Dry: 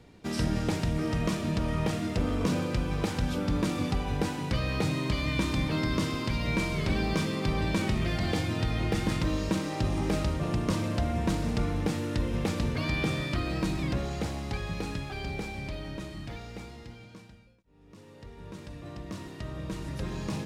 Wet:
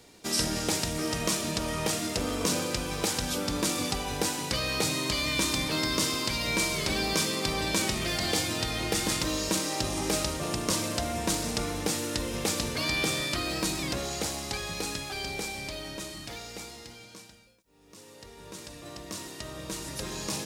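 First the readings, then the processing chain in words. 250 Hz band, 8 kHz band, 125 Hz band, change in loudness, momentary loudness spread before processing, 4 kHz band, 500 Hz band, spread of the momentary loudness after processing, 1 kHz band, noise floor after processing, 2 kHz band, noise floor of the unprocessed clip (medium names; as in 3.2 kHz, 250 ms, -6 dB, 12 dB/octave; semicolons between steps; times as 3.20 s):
-3.0 dB, +14.5 dB, -7.0 dB, +1.5 dB, 12 LU, +9.0 dB, +1.0 dB, 13 LU, +2.0 dB, -51 dBFS, +3.5 dB, -51 dBFS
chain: tone controls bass -10 dB, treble +14 dB; trim +2 dB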